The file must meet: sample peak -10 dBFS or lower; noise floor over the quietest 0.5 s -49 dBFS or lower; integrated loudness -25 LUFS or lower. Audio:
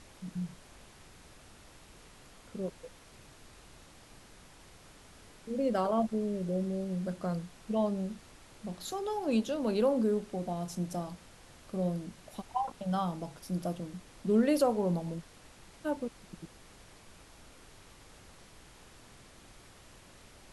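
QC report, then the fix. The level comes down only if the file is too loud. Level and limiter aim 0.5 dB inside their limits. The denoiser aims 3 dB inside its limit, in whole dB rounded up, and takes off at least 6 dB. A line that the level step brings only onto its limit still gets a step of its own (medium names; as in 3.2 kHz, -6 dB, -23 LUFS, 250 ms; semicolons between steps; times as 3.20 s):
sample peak -16.0 dBFS: pass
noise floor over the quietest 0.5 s -55 dBFS: pass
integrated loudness -33.5 LUFS: pass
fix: none needed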